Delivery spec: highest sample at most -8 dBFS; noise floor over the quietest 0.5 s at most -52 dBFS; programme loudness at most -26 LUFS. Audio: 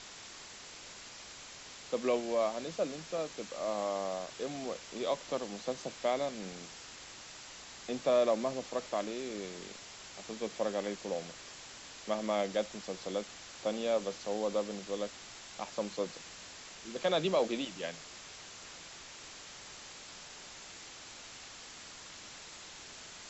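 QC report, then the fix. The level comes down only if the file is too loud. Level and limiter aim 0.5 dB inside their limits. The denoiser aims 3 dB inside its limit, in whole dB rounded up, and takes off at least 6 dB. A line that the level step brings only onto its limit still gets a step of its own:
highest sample -18.0 dBFS: pass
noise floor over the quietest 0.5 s -50 dBFS: fail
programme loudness -37.5 LUFS: pass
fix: noise reduction 6 dB, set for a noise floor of -50 dBFS

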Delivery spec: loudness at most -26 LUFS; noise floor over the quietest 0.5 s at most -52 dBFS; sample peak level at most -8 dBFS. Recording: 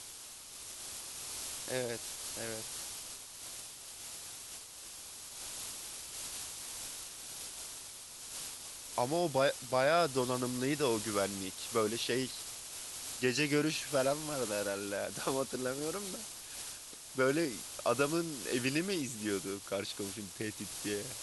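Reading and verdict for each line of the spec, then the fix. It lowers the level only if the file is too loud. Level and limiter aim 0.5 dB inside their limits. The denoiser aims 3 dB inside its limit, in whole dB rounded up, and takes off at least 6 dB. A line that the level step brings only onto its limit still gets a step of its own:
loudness -36.0 LUFS: pass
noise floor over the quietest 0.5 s -49 dBFS: fail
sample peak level -16.0 dBFS: pass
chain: noise reduction 6 dB, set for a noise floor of -49 dBFS

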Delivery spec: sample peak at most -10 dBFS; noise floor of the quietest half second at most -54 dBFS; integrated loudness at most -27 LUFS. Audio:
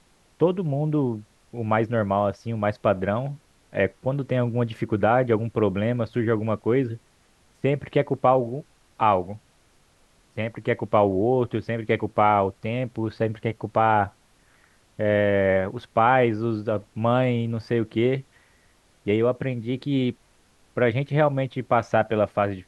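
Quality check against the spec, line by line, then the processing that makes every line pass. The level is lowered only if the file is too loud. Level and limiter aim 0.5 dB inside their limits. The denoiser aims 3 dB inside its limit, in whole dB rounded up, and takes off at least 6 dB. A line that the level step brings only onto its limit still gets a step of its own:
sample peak -5.0 dBFS: fail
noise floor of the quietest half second -60 dBFS: pass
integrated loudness -24.0 LUFS: fail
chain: trim -3.5 dB; peak limiter -10.5 dBFS

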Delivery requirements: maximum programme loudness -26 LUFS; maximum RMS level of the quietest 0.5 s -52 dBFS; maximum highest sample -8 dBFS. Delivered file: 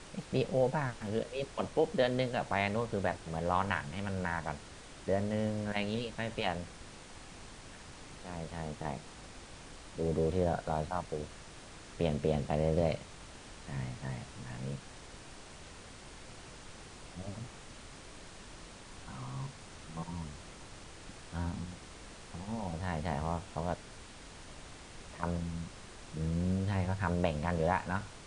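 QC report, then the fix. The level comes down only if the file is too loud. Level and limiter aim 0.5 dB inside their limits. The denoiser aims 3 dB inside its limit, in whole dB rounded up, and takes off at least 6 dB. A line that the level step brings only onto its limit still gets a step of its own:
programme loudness -35.5 LUFS: pass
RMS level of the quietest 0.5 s -50 dBFS: fail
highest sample -14.5 dBFS: pass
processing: noise reduction 6 dB, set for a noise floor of -50 dBFS

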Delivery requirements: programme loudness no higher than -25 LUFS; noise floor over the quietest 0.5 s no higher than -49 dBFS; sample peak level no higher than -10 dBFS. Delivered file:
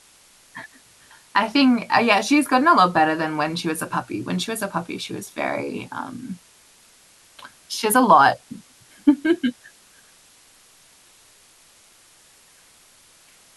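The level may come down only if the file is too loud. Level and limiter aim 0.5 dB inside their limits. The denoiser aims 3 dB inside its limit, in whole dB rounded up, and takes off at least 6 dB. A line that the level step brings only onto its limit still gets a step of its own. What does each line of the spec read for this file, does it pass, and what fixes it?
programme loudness -20.0 LUFS: fail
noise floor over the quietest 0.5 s -53 dBFS: pass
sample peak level -3.5 dBFS: fail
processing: trim -5.5 dB; peak limiter -10.5 dBFS

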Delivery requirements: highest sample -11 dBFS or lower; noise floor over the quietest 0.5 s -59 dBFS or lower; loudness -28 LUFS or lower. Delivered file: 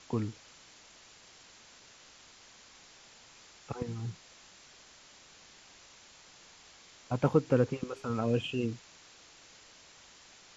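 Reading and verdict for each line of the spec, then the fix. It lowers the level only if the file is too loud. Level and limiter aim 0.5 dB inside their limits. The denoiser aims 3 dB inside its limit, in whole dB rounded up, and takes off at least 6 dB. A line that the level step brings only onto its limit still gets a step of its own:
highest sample -12.0 dBFS: pass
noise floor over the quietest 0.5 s -57 dBFS: fail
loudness -32.5 LUFS: pass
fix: noise reduction 6 dB, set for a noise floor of -57 dBFS

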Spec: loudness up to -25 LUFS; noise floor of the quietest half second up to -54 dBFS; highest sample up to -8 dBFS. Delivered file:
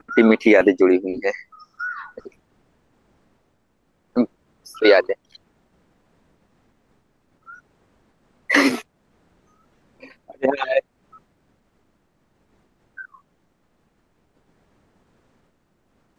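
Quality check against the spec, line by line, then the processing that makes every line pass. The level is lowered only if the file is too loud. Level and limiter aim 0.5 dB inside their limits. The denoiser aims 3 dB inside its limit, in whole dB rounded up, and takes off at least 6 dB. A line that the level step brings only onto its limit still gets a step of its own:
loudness -19.0 LUFS: fail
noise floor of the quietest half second -66 dBFS: pass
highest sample -2.5 dBFS: fail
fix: trim -6.5 dB

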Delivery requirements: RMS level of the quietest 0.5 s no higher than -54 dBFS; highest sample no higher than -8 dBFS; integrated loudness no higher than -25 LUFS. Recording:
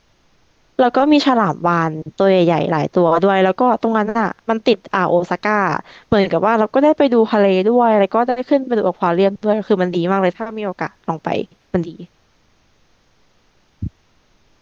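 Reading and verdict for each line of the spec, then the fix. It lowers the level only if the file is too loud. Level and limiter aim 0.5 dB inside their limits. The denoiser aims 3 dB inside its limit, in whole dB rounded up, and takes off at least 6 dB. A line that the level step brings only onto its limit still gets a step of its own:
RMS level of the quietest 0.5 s -57 dBFS: pass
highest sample -3.5 dBFS: fail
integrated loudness -16.0 LUFS: fail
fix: trim -9.5 dB

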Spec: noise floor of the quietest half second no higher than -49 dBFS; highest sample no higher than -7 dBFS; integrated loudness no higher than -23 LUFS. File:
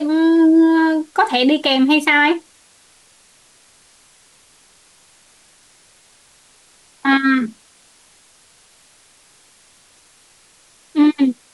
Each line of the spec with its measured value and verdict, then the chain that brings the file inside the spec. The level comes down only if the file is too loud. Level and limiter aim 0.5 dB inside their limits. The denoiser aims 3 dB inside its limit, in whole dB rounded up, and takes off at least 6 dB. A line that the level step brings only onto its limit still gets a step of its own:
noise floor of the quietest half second -52 dBFS: pass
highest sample -5.0 dBFS: fail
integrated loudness -15.0 LUFS: fail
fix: trim -8.5 dB

